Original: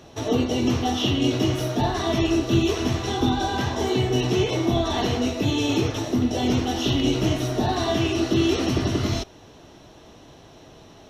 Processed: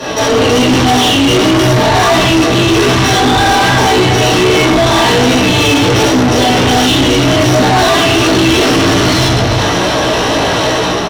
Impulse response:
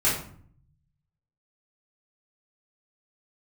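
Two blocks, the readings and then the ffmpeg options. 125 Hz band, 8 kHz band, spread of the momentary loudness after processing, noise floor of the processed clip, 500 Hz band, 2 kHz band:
+11.5 dB, +18.0 dB, 3 LU, −13 dBFS, +14.5 dB, +20.5 dB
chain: -filter_complex "[0:a]dynaudnorm=framelen=150:gausssize=5:maxgain=9dB,asplit=2[link_01][link_02];[link_02]aecho=0:1:354:0.0794[link_03];[link_01][link_03]amix=inputs=2:normalize=0[link_04];[1:a]atrim=start_sample=2205,afade=type=out:start_time=0.39:duration=0.01,atrim=end_sample=17640,asetrate=31752,aresample=44100[link_05];[link_04][link_05]afir=irnorm=-1:irlink=0,areverse,acompressor=threshold=-10dB:ratio=6,areverse,flanger=delay=15.5:depth=2.2:speed=1.3,equalizer=frequency=6800:width=5.6:gain=-7,asplit=2[link_06][link_07];[link_07]highpass=frequency=720:poles=1,volume=28dB,asoftclip=type=tanh:threshold=-5dB[link_08];[link_06][link_08]amix=inputs=2:normalize=0,lowpass=frequency=5100:poles=1,volume=-6dB,volume=2dB"

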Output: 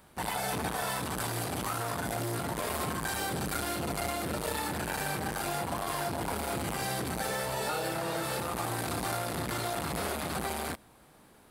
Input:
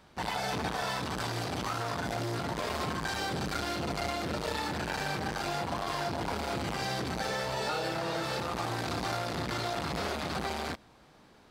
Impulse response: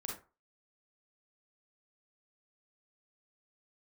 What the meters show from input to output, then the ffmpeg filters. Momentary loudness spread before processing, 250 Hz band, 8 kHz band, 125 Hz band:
1 LU, 0.0 dB, +6.5 dB, 0.0 dB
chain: -af "highshelf=frequency=7600:width_type=q:width=1.5:gain=11.5"

